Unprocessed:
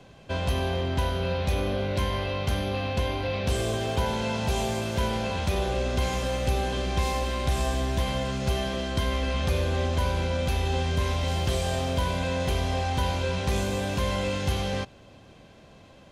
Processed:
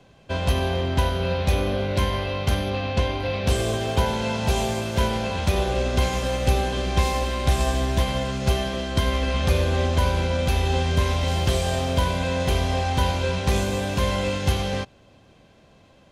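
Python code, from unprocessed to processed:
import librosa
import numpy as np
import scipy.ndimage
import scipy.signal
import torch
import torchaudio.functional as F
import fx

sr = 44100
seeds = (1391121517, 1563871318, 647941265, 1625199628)

y = fx.lowpass(x, sr, hz=8000.0, slope=12, at=(2.7, 3.2))
y = fx.upward_expand(y, sr, threshold_db=-39.0, expansion=1.5)
y = y * librosa.db_to_amplitude(6.5)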